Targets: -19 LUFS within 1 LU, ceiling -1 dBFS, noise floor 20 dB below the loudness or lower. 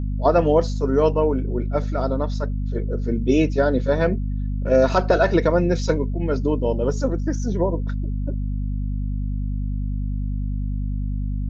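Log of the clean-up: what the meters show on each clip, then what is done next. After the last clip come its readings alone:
hum 50 Hz; highest harmonic 250 Hz; hum level -22 dBFS; loudness -22.5 LUFS; peak level -4.5 dBFS; loudness target -19.0 LUFS
-> hum notches 50/100/150/200/250 Hz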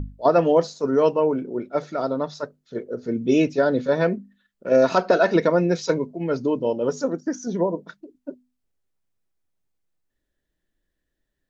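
hum not found; loudness -22.0 LUFS; peak level -5.5 dBFS; loudness target -19.0 LUFS
-> trim +3 dB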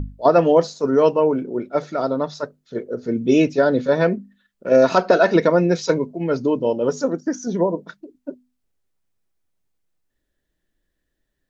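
loudness -19.0 LUFS; peak level -2.5 dBFS; noise floor -76 dBFS

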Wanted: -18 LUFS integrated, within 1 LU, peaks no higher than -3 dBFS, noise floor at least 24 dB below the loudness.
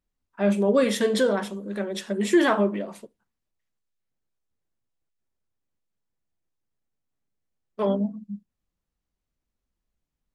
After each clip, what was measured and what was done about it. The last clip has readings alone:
loudness -24.0 LUFS; peak level -9.5 dBFS; loudness target -18.0 LUFS
-> trim +6 dB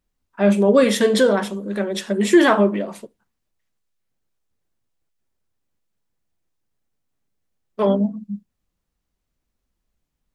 loudness -18.0 LUFS; peak level -3.5 dBFS; noise floor -78 dBFS

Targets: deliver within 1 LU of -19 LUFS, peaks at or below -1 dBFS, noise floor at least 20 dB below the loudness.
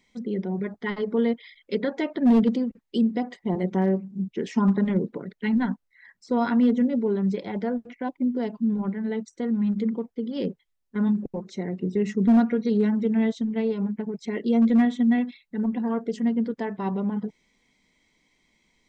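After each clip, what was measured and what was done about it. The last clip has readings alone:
clipped samples 0.4%; clipping level -13.5 dBFS; loudness -25.5 LUFS; peak level -13.5 dBFS; loudness target -19.0 LUFS
-> clip repair -13.5 dBFS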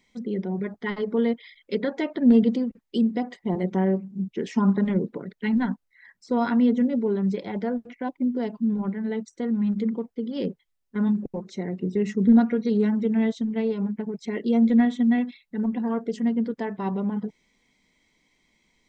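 clipped samples 0.0%; loudness -25.0 LUFS; peak level -8.0 dBFS; loudness target -19.0 LUFS
-> trim +6 dB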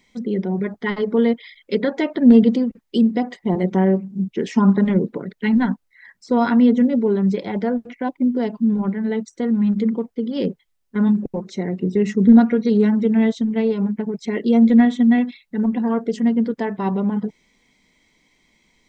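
loudness -19.0 LUFS; peak level -2.0 dBFS; noise floor -68 dBFS

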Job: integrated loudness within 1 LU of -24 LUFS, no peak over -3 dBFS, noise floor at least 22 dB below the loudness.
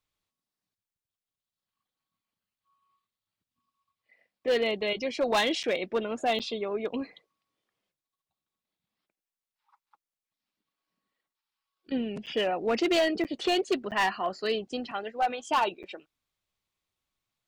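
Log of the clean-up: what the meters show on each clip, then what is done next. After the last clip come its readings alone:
clipped samples 0.8%; clipping level -20.0 dBFS; dropouts 6; longest dropout 8.0 ms; loudness -29.0 LUFS; peak level -20.0 dBFS; loudness target -24.0 LUFS
-> clip repair -20 dBFS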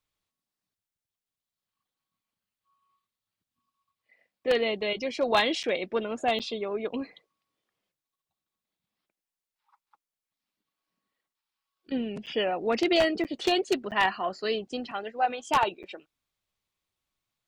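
clipped samples 0.0%; dropouts 6; longest dropout 8.0 ms
-> interpolate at 5.63/6.39/12.26/13.24/13.91/15.83 s, 8 ms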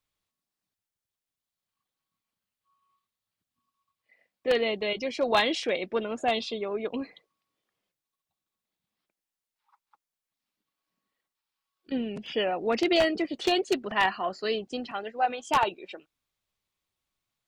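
dropouts 0; loudness -28.0 LUFS; peak level -11.0 dBFS; loudness target -24.0 LUFS
-> trim +4 dB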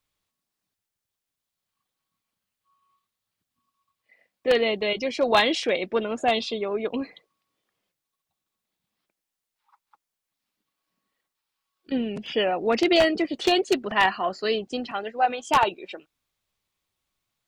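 loudness -24.0 LUFS; peak level -7.0 dBFS; noise floor -86 dBFS

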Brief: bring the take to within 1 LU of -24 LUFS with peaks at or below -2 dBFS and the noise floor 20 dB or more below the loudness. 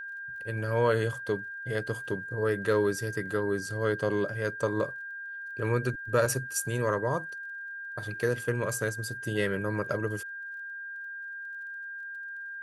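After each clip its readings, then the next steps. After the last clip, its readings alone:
tick rate 27 per s; steady tone 1.6 kHz; tone level -37 dBFS; loudness -31.0 LUFS; peak level -12.0 dBFS; loudness target -24.0 LUFS
-> de-click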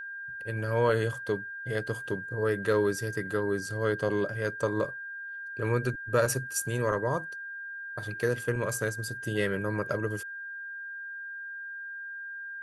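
tick rate 0.079 per s; steady tone 1.6 kHz; tone level -37 dBFS
-> band-stop 1.6 kHz, Q 30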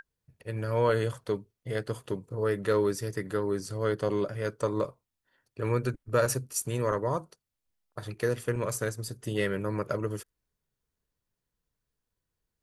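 steady tone not found; loudness -31.0 LUFS; peak level -12.5 dBFS; loudness target -24.0 LUFS
-> trim +7 dB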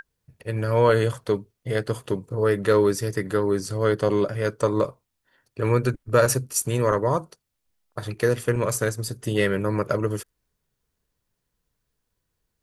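loudness -24.0 LUFS; peak level -5.5 dBFS; noise floor -79 dBFS

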